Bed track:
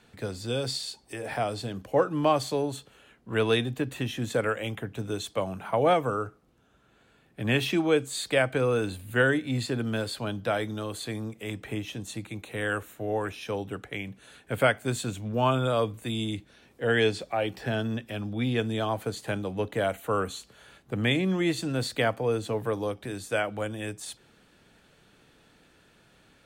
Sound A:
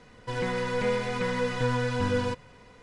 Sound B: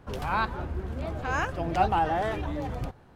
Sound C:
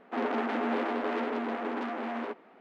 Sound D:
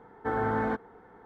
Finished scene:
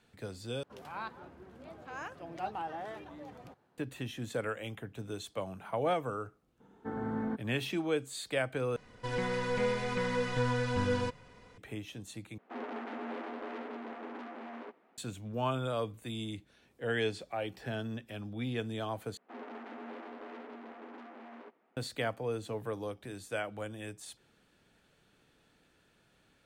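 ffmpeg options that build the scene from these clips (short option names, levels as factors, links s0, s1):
-filter_complex "[3:a]asplit=2[s0][s1];[0:a]volume=0.376[s2];[2:a]highpass=180[s3];[4:a]equalizer=f=200:w=0.93:g=14[s4];[s2]asplit=5[s5][s6][s7][s8][s9];[s5]atrim=end=0.634[s10];[s3]atrim=end=3.15,asetpts=PTS-STARTPTS,volume=0.211[s11];[s6]atrim=start=3.776:end=8.764[s12];[1:a]atrim=end=2.82,asetpts=PTS-STARTPTS,volume=0.631[s13];[s7]atrim=start=11.576:end=12.384[s14];[s0]atrim=end=2.6,asetpts=PTS-STARTPTS,volume=0.299[s15];[s8]atrim=start=14.976:end=19.174[s16];[s1]atrim=end=2.6,asetpts=PTS-STARTPTS,volume=0.168[s17];[s9]atrim=start=21.766[s18];[s4]atrim=end=1.25,asetpts=PTS-STARTPTS,volume=0.2,afade=t=in:d=0.004:c=hsin,afade=t=out:st=1.246:d=0.004:c=hsin,adelay=6600[s19];[s10][s11]acrossfade=d=0.004:c1=hsin:c2=hsin[s20];[s20][s12]acrossfade=d=0.004:c1=hsin:c2=hsin[s21];[s21][s13]acrossfade=d=0.004:c1=hsin:c2=hsin[s22];[s22][s14]acrossfade=d=0.004:c1=hsin:c2=hsin[s23];[s23][s15]acrossfade=d=0.004:c1=hsin:c2=hsin[s24];[s24][s16]acrossfade=d=0.004:c1=hsin:c2=hsin[s25];[s25][s17]acrossfade=d=0.004:c1=hsin:c2=hsin[s26];[s26][s18]acrossfade=d=0.004:c1=hsin:c2=hsin[s27];[s27][s19]amix=inputs=2:normalize=0"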